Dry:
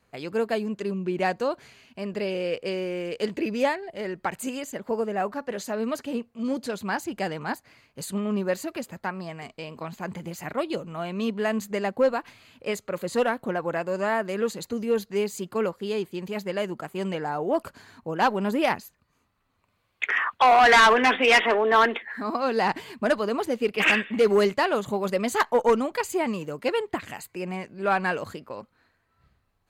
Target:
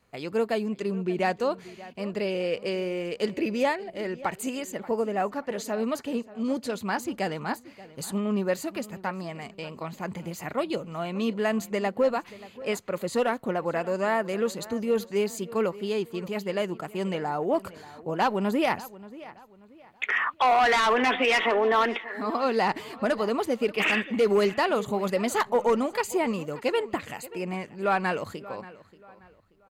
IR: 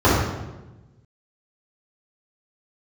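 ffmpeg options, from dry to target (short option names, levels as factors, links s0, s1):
-filter_complex "[0:a]bandreject=f=1600:w=16,alimiter=limit=0.168:level=0:latency=1:release=47,asplit=2[s0][s1];[s1]adelay=582,lowpass=f=4000:p=1,volume=0.126,asplit=2[s2][s3];[s3]adelay=582,lowpass=f=4000:p=1,volume=0.34,asplit=2[s4][s5];[s5]adelay=582,lowpass=f=4000:p=1,volume=0.34[s6];[s0][s2][s4][s6]amix=inputs=4:normalize=0"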